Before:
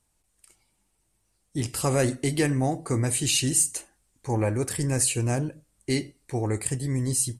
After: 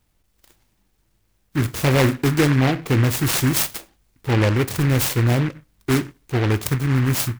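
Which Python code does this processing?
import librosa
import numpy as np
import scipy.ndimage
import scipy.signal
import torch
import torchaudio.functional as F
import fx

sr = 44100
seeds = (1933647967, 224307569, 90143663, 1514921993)

y = fx.low_shelf(x, sr, hz=470.0, db=6.5)
y = fx.noise_mod_delay(y, sr, seeds[0], noise_hz=1500.0, depth_ms=0.16)
y = F.gain(torch.from_numpy(y), 2.5).numpy()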